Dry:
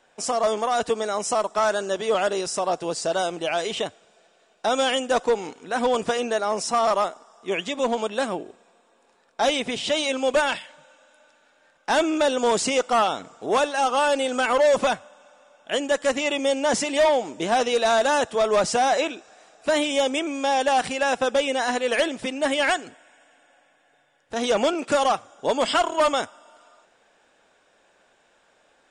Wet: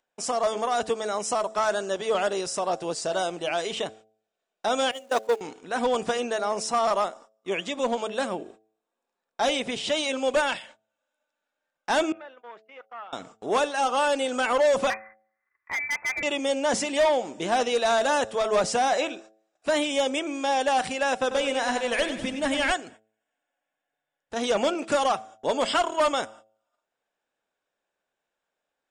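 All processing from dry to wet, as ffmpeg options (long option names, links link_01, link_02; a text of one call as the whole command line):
ffmpeg -i in.wav -filter_complex "[0:a]asettb=1/sr,asplit=3[link_01][link_02][link_03];[link_01]atrim=end=4.914[link_04];[link_02]atrim=start=4.91:end=5.41,asetpts=PTS-STARTPTS,afade=type=in:duration=0.004:curve=qsin,afade=type=out:start_time=0.496:duration=0.004:curve=qsin,aeval=exprs='val(0)+0.5*0.0355*sgn(val(0))':channel_layout=same,highpass=270,agate=range=-22dB:threshold=-20dB:ratio=16:release=100:detection=peak[link_05];[link_03]atrim=start=5.406[link_06];[link_04][link_05]acrossfade=duration=0.004:curve1=hsin:curve2=qsin[link_07];[link_07][link_06]acrossfade=duration=0.004:curve1=qsin:curve2=hsin,asettb=1/sr,asplit=3[link_08][link_09][link_10];[link_08]atrim=end=12.124[link_11];[link_09]atrim=start=12.12:end=13.13,asetpts=PTS-STARTPTS,afade=type=in:duration=0.004:curve=qsin,afade=type=out:start_time=1.006:duration=0.004:curve=qsin,lowpass=frequency=1900:width=0.5412,lowpass=frequency=1900:width=1.3066,aderivative,agate=range=-33dB:threshold=-53dB:ratio=3:release=100:detection=peak[link_12];[link_10]atrim=start=13.126[link_13];[link_11][link_12]acrossfade=duration=0.004:curve1=hsin:curve2=qsin[link_14];[link_14][link_13]acrossfade=duration=0.004:curve1=qsin:curve2=hsin,asettb=1/sr,asplit=3[link_15][link_16][link_17];[link_15]atrim=end=14.904[link_18];[link_16]atrim=start=14.9:end=16.23,asetpts=PTS-STARTPTS,afade=type=in:duration=0.004:curve=qsin,afade=type=out:start_time=1.326:duration=0.004:curve=qsin,lowpass=frequency=2200:width_type=q:width=0.5098,lowpass=frequency=2200:width_type=q:width=0.6013,lowpass=frequency=2200:width_type=q:width=0.9,lowpass=frequency=2200:width_type=q:width=2.563,afreqshift=-2600,volume=22dB,asoftclip=hard,volume=-22dB[link_19];[link_17]atrim=start=16.226[link_20];[link_18][link_19]acrossfade=duration=0.004:curve1=hsin:curve2=qsin[link_21];[link_21][link_20]acrossfade=duration=0.004:curve1=qsin:curve2=hsin,asettb=1/sr,asplit=3[link_22][link_23][link_24];[link_22]atrim=end=21.194[link_25];[link_23]atrim=start=21.19:end=22.72,asetpts=PTS-STARTPTS,afade=type=in:duration=0.004:curve=qsin,afade=type=out:start_time=1.526:duration=0.004:curve=qsin,asubboost=boost=8.5:cutoff=200,aecho=1:1:95|190|285|380|475|570:0.335|0.171|0.0871|0.0444|0.0227|0.0116,atrim=end_sample=67473[link_26];[link_24]atrim=start=22.716[link_27];[link_25][link_26]acrossfade=duration=0.004:curve1=hsin:curve2=qsin[link_28];[link_28][link_27]acrossfade=duration=0.004:curve1=qsin:curve2=hsin,acompressor=mode=upward:threshold=-40dB:ratio=2.5,agate=range=-30dB:threshold=-44dB:ratio=16:detection=peak,bandreject=frequency=109.2:width_type=h:width=4,bandreject=frequency=218.4:width_type=h:width=4,bandreject=frequency=327.6:width_type=h:width=4,bandreject=frequency=436.8:width_type=h:width=4,bandreject=frequency=546:width_type=h:width=4,bandreject=frequency=655.2:width_type=h:width=4,bandreject=frequency=764.4:width_type=h:width=4,volume=-2.5dB" out.wav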